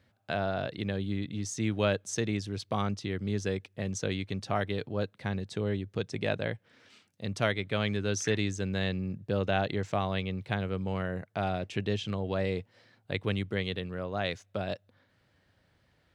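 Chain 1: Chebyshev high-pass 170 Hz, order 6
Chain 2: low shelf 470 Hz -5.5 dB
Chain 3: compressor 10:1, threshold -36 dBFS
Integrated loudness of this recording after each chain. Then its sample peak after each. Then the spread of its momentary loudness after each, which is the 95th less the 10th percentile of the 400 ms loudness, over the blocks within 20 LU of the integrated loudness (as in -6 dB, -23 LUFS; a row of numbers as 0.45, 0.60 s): -34.0, -35.5, -42.0 LUFS; -14.5, -12.0, -20.5 dBFS; 7, 7, 4 LU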